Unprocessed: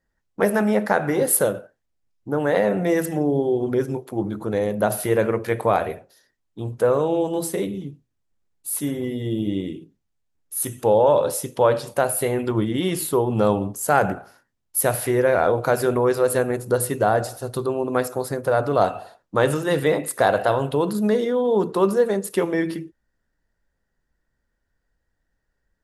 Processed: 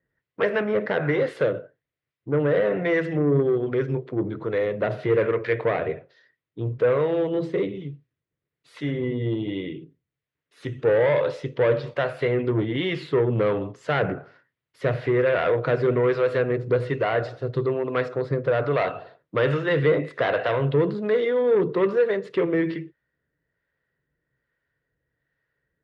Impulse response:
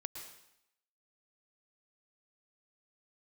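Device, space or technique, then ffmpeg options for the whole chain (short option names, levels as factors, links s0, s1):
guitar amplifier with harmonic tremolo: -filter_complex "[0:a]acrossover=split=590[s0][s1];[s0]aeval=exprs='val(0)*(1-0.5/2+0.5/2*cos(2*PI*1.2*n/s))':c=same[s2];[s1]aeval=exprs='val(0)*(1-0.5/2-0.5/2*cos(2*PI*1.2*n/s))':c=same[s3];[s2][s3]amix=inputs=2:normalize=0,asoftclip=type=tanh:threshold=0.126,highpass=100,equalizer=f=140:t=q:w=4:g=8,equalizer=f=210:t=q:w=4:g=-9,equalizer=f=450:t=q:w=4:g=4,equalizer=f=810:t=q:w=4:g=-9,equalizer=f=2000:t=q:w=4:g=6,lowpass=f=3700:w=0.5412,lowpass=f=3700:w=1.3066,volume=1.33"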